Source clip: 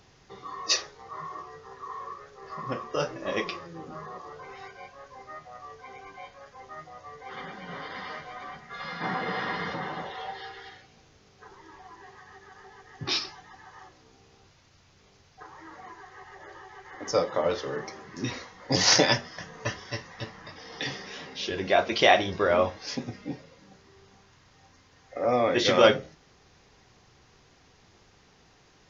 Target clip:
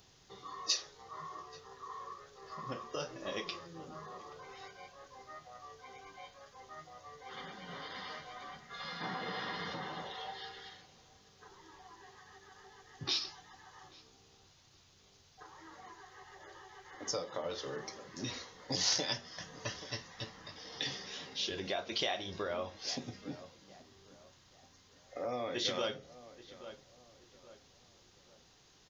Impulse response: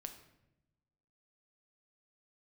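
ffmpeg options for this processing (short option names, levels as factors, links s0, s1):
-filter_complex "[0:a]asplit=2[s0][s1];[s1]adelay=829,lowpass=f=1900:p=1,volume=0.0708,asplit=2[s2][s3];[s3]adelay=829,lowpass=f=1900:p=1,volume=0.39,asplit=2[s4][s5];[s5]adelay=829,lowpass=f=1900:p=1,volume=0.39[s6];[s2][s4][s6]amix=inputs=3:normalize=0[s7];[s0][s7]amix=inputs=2:normalize=0,acompressor=threshold=0.0355:ratio=3,aexciter=amount=2.9:drive=2.7:freq=3100,volume=0.422"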